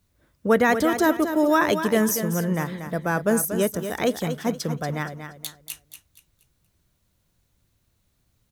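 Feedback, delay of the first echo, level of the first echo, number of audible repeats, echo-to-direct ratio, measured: 32%, 236 ms, −9.0 dB, 3, −8.5 dB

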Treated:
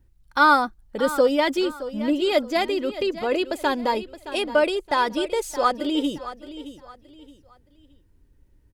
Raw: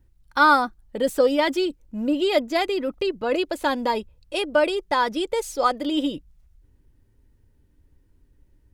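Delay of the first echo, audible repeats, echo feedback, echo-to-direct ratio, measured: 620 ms, 3, 31%, −13.5 dB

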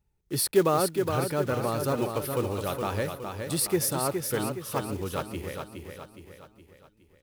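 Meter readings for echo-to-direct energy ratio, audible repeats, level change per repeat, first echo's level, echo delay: −5.0 dB, 5, −6.5 dB, −6.0 dB, 416 ms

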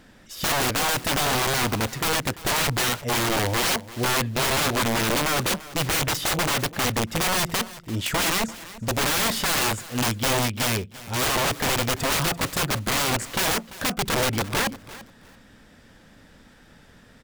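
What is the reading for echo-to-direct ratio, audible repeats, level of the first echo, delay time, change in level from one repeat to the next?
−17.5 dB, 2, −17.5 dB, 341 ms, −14.0 dB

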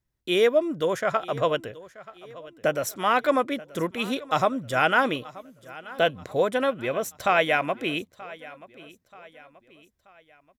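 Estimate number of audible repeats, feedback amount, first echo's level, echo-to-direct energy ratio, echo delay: 3, 44%, −19.5 dB, −18.5 dB, 931 ms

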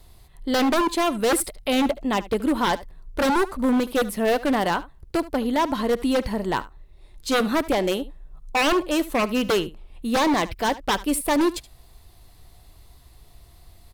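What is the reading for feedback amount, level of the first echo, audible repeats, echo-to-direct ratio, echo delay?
repeats not evenly spaced, −18.0 dB, 1, −18.0 dB, 74 ms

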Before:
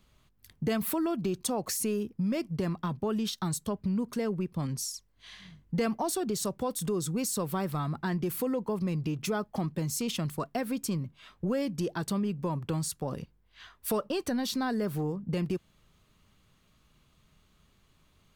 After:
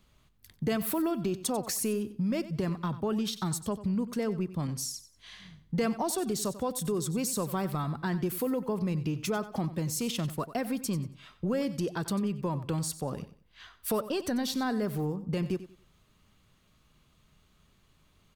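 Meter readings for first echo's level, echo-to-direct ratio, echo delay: −14.5 dB, −14.0 dB, 93 ms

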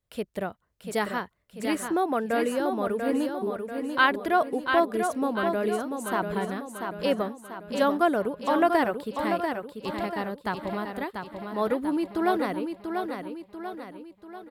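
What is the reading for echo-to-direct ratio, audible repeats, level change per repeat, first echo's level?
−5.0 dB, 5, −6.0 dB, −6.0 dB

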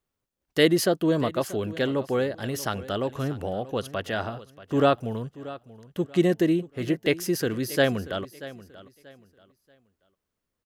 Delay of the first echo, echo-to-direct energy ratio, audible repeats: 634 ms, −16.5 dB, 2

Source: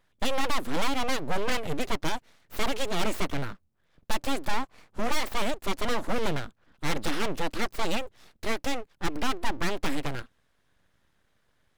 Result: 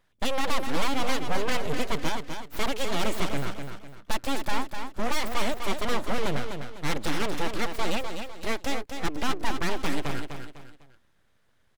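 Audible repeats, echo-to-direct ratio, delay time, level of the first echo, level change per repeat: 3, −6.5 dB, 251 ms, −7.0 dB, −9.0 dB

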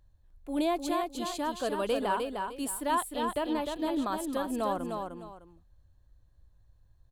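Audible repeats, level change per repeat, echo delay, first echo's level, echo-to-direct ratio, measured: 2, −11.5 dB, 304 ms, −5.0 dB, −4.5 dB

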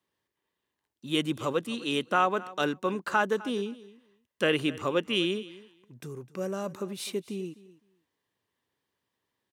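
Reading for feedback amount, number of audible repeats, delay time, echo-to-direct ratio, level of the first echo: 16%, 2, 256 ms, −19.0 dB, −19.0 dB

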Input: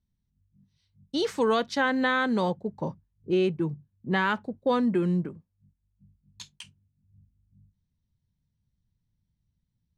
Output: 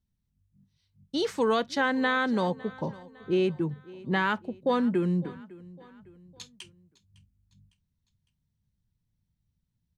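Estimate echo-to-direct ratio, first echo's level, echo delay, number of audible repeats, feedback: −20.0 dB, −21.0 dB, 556 ms, 3, 46%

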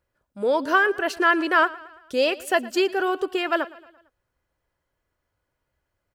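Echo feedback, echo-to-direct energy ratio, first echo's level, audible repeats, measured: 52%, −18.5 dB, −20.0 dB, 3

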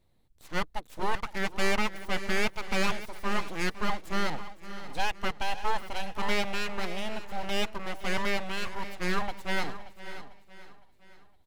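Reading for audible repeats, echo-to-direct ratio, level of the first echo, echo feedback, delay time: 6, −11.5 dB, −16.0 dB, repeats not evenly spaced, 512 ms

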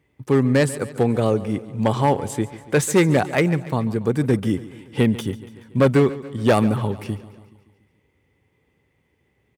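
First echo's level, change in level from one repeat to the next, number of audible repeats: −17.0 dB, −4.5 dB, 4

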